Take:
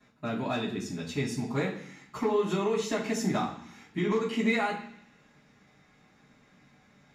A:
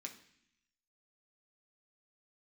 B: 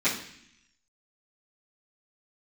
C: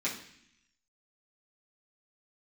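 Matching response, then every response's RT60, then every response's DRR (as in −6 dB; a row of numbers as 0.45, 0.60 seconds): B; 0.65, 0.65, 0.65 seconds; 1.0, −15.0, −8.5 decibels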